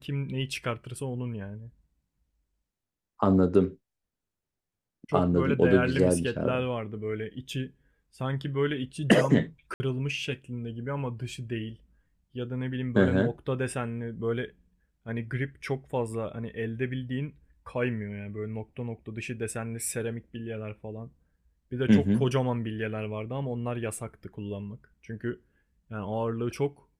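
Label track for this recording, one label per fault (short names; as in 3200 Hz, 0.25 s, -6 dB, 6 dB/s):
9.740000	9.800000	gap 60 ms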